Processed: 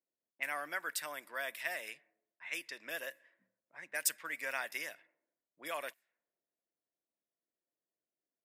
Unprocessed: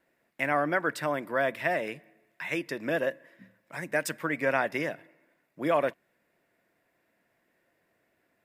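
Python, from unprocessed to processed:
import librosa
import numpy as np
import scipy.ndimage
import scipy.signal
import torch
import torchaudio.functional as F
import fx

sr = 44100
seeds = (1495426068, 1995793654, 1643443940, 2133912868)

y = fx.env_lowpass(x, sr, base_hz=380.0, full_db=-27.5)
y = np.diff(y, prepend=0.0)
y = y * 10.0 ** (4.0 / 20.0)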